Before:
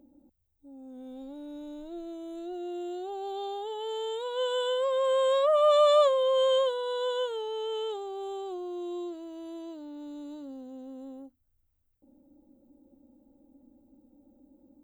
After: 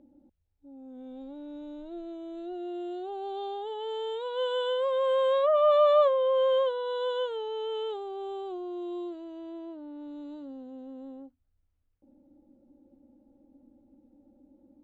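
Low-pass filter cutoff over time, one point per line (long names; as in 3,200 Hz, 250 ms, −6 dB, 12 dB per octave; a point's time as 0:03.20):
0:05.06 3,700 Hz
0:05.87 2,200 Hz
0:06.50 2,200 Hz
0:06.96 3,600 Hz
0:09.27 3,600 Hz
0:09.79 1,900 Hz
0:10.25 3,400 Hz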